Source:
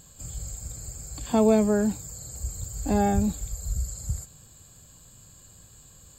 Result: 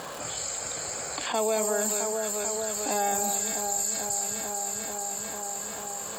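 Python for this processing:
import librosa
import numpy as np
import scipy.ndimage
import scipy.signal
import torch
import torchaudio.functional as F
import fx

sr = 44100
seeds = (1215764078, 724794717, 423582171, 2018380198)

p1 = fx.env_lowpass(x, sr, base_hz=1100.0, full_db=-22.0)
p2 = scipy.signal.sosfilt(scipy.signal.butter(2, 580.0, 'highpass', fs=sr, output='sos'), p1)
p3 = fx.high_shelf(p2, sr, hz=4100.0, db=11.5)
p4 = fx.dmg_crackle(p3, sr, seeds[0], per_s=520.0, level_db=-61.0)
p5 = p4 + fx.echo_alternate(p4, sr, ms=221, hz=1500.0, feedback_pct=78, wet_db=-9.0, dry=0)
p6 = fx.env_flatten(p5, sr, amount_pct=70)
y = p6 * 10.0 ** (-2.5 / 20.0)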